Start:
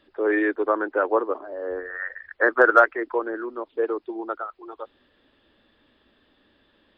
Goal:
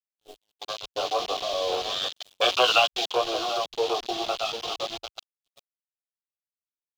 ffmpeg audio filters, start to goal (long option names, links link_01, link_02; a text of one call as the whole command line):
ffmpeg -i in.wav -filter_complex "[0:a]aeval=exprs='if(lt(val(0),0),0.251*val(0),val(0))':channel_layout=same,acrossover=split=150|320|1200[link_01][link_02][link_03][link_04];[link_02]alimiter=level_in=10.5dB:limit=-24dB:level=0:latency=1:release=53,volume=-10.5dB[link_05];[link_01][link_05][link_03][link_04]amix=inputs=4:normalize=0,asplit=3[link_06][link_07][link_08];[link_06]bandpass=frequency=730:width_type=q:width=8,volume=0dB[link_09];[link_07]bandpass=frequency=1090:width_type=q:width=8,volume=-6dB[link_10];[link_08]bandpass=frequency=2440:width_type=q:width=8,volume=-9dB[link_11];[link_09][link_10][link_11]amix=inputs=3:normalize=0,acompressor=threshold=-47dB:ratio=2,asplit=2[link_12][link_13];[link_13]adelay=740,lowpass=frequency=1500:poles=1,volume=-9dB,asplit=2[link_14][link_15];[link_15]adelay=740,lowpass=frequency=1500:poles=1,volume=0.24,asplit=2[link_16][link_17];[link_17]adelay=740,lowpass=frequency=1500:poles=1,volume=0.24[link_18];[link_12][link_14][link_16][link_18]amix=inputs=4:normalize=0,flanger=delay=16:depth=4:speed=0.36,dynaudnorm=framelen=230:gausssize=9:maxgain=15dB,aeval=exprs='val(0)*gte(abs(val(0)),0.00794)':channel_layout=same,agate=range=-24dB:threshold=-47dB:ratio=16:detection=peak,highshelf=frequency=2500:width_type=q:width=3:gain=9.5,afwtdn=0.00447,asplit=3[link_19][link_20][link_21];[link_19]afade=type=out:start_time=2.16:duration=0.02[link_22];[link_20]adynamicequalizer=threshold=0.00794:dfrequency=1600:dqfactor=0.7:tfrequency=1600:tqfactor=0.7:attack=5:release=100:ratio=0.375:range=3:mode=boostabove:tftype=highshelf,afade=type=in:start_time=2.16:duration=0.02,afade=type=out:start_time=3.07:duration=0.02[link_23];[link_21]afade=type=in:start_time=3.07:duration=0.02[link_24];[link_22][link_23][link_24]amix=inputs=3:normalize=0,volume=8.5dB" out.wav